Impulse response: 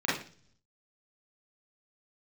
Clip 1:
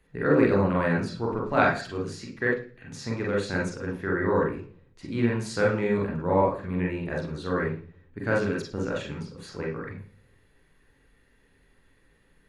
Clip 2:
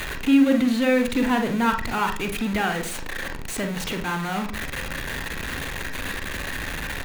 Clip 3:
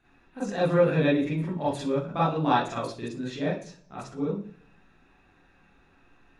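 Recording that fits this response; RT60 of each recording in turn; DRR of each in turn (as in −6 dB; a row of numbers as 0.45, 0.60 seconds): 3; 0.45, 0.45, 0.45 seconds; −2.5, 5.5, −8.5 decibels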